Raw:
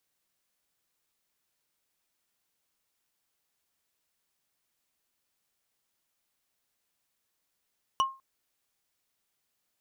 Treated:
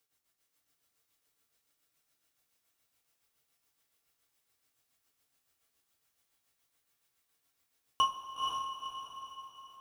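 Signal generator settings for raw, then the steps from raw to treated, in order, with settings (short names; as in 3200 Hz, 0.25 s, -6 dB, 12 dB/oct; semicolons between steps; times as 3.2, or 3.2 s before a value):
wood hit, length 0.20 s, lowest mode 1070 Hz, decay 0.30 s, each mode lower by 6 dB, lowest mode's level -19 dB
tremolo 7.1 Hz, depth 92%; on a send: diffused feedback echo 0.493 s, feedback 42%, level -3 dB; on the sum: two-slope reverb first 0.28 s, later 3.7 s, from -19 dB, DRR -1.5 dB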